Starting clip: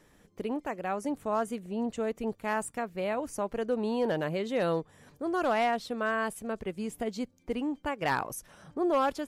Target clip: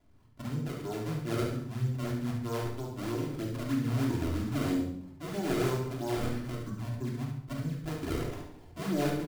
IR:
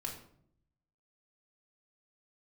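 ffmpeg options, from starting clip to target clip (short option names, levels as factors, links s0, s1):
-filter_complex "[0:a]asetrate=24046,aresample=44100,atempo=1.83401,acrusher=samples=30:mix=1:aa=0.000001:lfo=1:lforange=48:lforate=3.1,aecho=1:1:70|140|210|280|350:0.447|0.174|0.0679|0.0265|0.0103[s0];[1:a]atrim=start_sample=2205[s1];[s0][s1]afir=irnorm=-1:irlink=0,volume=0.596"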